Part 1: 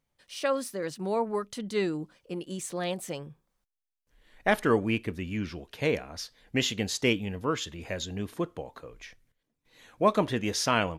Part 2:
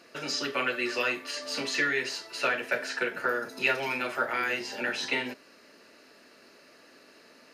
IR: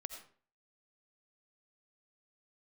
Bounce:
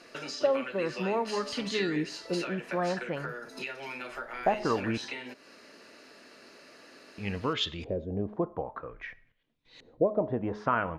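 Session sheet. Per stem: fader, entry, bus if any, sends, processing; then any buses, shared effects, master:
+0.5 dB, 0.00 s, muted 4.98–7.18 s, send -13 dB, compression 6:1, threshold -28 dBFS, peak gain reduction 11.5 dB; LFO low-pass saw up 0.51 Hz 390–4800 Hz; de-hum 210.7 Hz, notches 6
+2.5 dB, 0.00 s, no send, low-pass 11 kHz 12 dB/octave; compression 5:1, threshold -40 dBFS, peak gain reduction 17 dB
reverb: on, RT60 0.45 s, pre-delay 45 ms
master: none

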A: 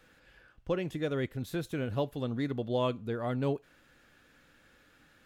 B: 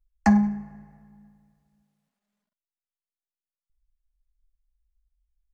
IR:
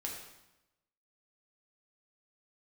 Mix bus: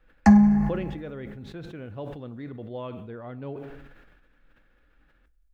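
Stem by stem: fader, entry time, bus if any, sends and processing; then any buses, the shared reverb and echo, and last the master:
-7.5 dB, 0.00 s, send -12.5 dB, low-pass 2.6 kHz 12 dB/octave
0.0 dB, 0.00 s, send -23 dB, bass shelf 190 Hz +7.5 dB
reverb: on, RT60 0.95 s, pre-delay 3 ms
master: decay stretcher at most 36 dB/s

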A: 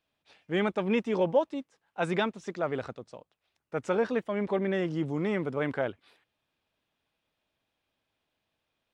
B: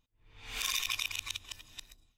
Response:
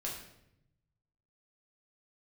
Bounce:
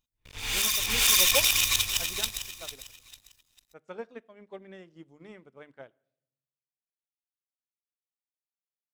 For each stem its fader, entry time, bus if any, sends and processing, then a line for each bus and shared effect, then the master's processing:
-5.5 dB, 0.00 s, send -22.5 dB, no echo send, hum notches 50/100/150/200/250/300/350 Hz; upward expansion 2.5:1, over -43 dBFS
+1.0 dB, 0.00 s, no send, echo send -5 dB, waveshaping leveller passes 5; auto duck -23 dB, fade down 1.50 s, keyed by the first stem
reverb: on, RT60 0.80 s, pre-delay 5 ms
echo: feedback delay 449 ms, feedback 31%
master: treble shelf 4 kHz +11 dB

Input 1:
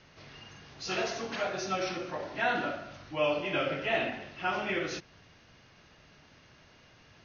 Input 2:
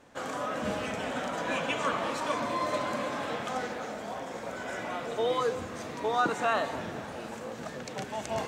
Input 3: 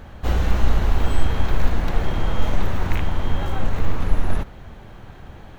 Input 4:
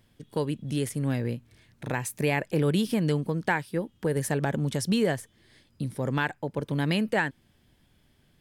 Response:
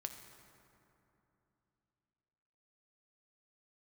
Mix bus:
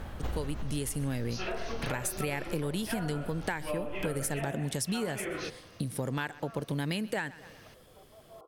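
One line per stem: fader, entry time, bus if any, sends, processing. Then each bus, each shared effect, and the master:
+0.5 dB, 0.50 s, no send, no echo send, low-pass that closes with the level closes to 1.4 kHz, closed at -26 dBFS; treble shelf 6.9 kHz +10 dB
-17.5 dB, 0.00 s, no send, no echo send, FFT band-pass 300–1400 Hz; comb of notches 890 Hz
0.0 dB, 0.00 s, no send, no echo send, peak limiter -12.5 dBFS, peak gain reduction 9 dB; auto duck -16 dB, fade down 1.00 s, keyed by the fourth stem
+2.5 dB, 0.00 s, no send, echo send -23 dB, treble shelf 4.6 kHz +9.5 dB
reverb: none
echo: feedback delay 128 ms, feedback 42%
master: compression 6:1, threshold -30 dBFS, peak gain reduction 13 dB

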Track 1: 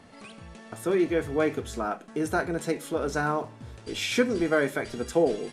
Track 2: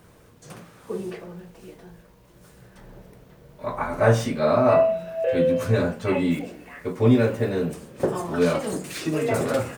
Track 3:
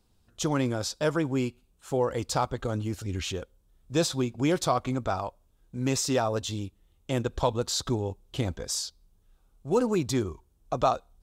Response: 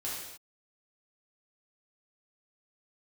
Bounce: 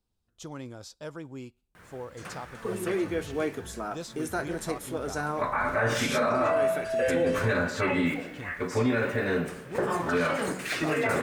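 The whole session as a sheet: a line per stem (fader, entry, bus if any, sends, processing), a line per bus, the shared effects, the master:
-12.5 dB, 2.00 s, no send, treble shelf 6.8 kHz +9 dB; level rider gain up to 8 dB
-5.5 dB, 1.75 s, send -12 dB, peaking EQ 1.7 kHz +12.5 dB 1.6 oct
-13.5 dB, 0.00 s, no send, none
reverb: on, pre-delay 3 ms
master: peak limiter -17 dBFS, peak gain reduction 10.5 dB

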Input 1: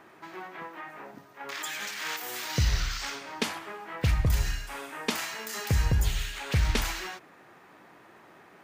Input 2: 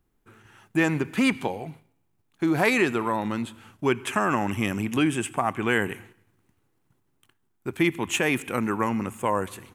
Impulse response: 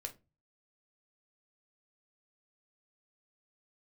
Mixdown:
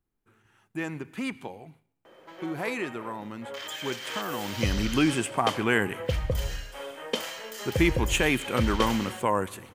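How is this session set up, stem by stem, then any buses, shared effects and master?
-4.5 dB, 2.05 s, no send, small resonant body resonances 520/3100 Hz, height 18 dB, ringing for 45 ms
4.36 s -10.5 dB -> 4.84 s -0.5 dB, 0.00 s, no send, none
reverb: none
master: none

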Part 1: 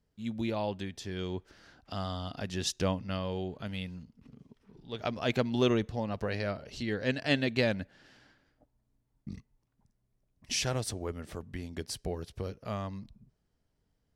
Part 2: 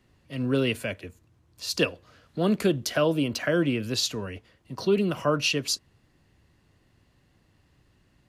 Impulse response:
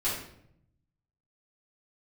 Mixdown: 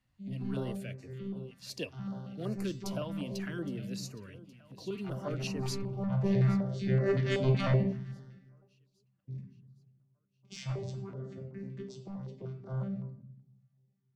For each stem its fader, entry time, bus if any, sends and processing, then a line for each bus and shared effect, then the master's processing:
5.83 s -21 dB -> 6.22 s -10 dB -> 8.32 s -10 dB -> 8.81 s -17.5 dB, 0.00 s, send -6 dB, no echo send, vocoder on a broken chord bare fifth, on C3, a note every 132 ms; peaking EQ 300 Hz -9.5 dB 0.33 oct; sine folder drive 9 dB, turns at -18 dBFS
-13.5 dB, 0.00 s, no send, echo send -18 dB, none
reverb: on, RT60 0.70 s, pre-delay 3 ms
echo: feedback delay 816 ms, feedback 49%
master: step-sequenced notch 5.3 Hz 400–3300 Hz

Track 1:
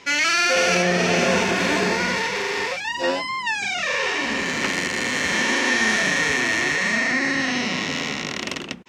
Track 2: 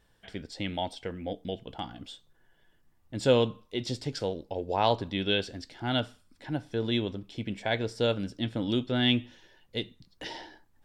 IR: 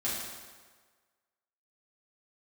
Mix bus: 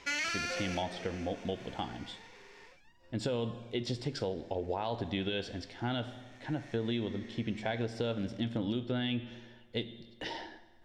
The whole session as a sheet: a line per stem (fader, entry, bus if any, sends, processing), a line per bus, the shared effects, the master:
2.66 s -8 dB -> 2.95 s -20.5 dB -> 6.21 s -20.5 dB -> 6.61 s -10.5 dB, 0.00 s, no send, auto duck -23 dB, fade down 1.30 s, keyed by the second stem
0.0 dB, 0.00 s, send -18 dB, treble shelf 7.1 kHz -12 dB; peak limiter -20 dBFS, peak gain reduction 9.5 dB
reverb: on, RT60 1.5 s, pre-delay 4 ms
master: compression 5:1, threshold -30 dBFS, peak gain reduction 6.5 dB

